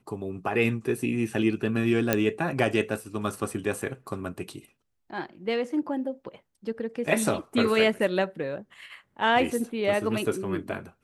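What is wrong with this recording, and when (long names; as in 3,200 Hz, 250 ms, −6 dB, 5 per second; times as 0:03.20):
0:02.13: click −7 dBFS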